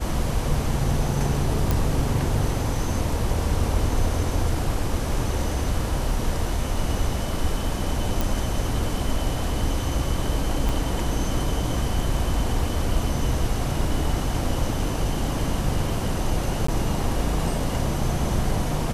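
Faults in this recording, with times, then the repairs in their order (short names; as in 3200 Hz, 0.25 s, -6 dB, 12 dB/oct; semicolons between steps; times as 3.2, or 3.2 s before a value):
1.71 pop
8.21 pop
10.69 pop
16.67–16.68 gap 14 ms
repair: de-click; interpolate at 16.67, 14 ms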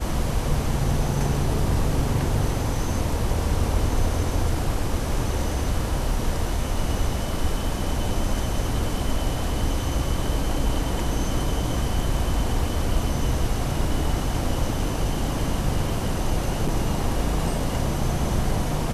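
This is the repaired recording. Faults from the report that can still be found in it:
10.69 pop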